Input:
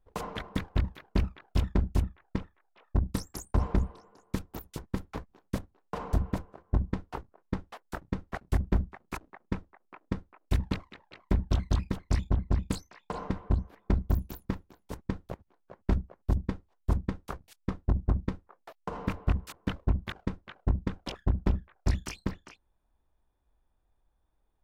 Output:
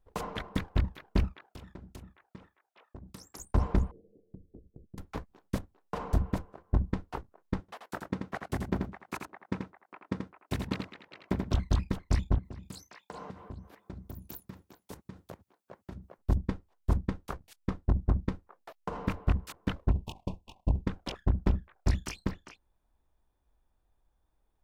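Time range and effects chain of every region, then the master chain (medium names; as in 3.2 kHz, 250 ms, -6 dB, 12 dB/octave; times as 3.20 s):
1.33–3.40 s: high-pass 230 Hz 6 dB/octave + compression 16:1, threshold -41 dBFS
3.91–4.98 s: steep low-pass 520 Hz 48 dB/octave + compression 2.5:1, threshold -50 dBFS
7.60–11.54 s: high-pass 130 Hz + delay 84 ms -5.5 dB
12.38–16.18 s: high-pass 88 Hz + treble shelf 4.5 kHz +7.5 dB + compression 16:1, threshold -38 dBFS
19.91–20.86 s: comb filter that takes the minimum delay 1.1 ms + elliptic band-stop 1–2.6 kHz, stop band 50 dB
whole clip: none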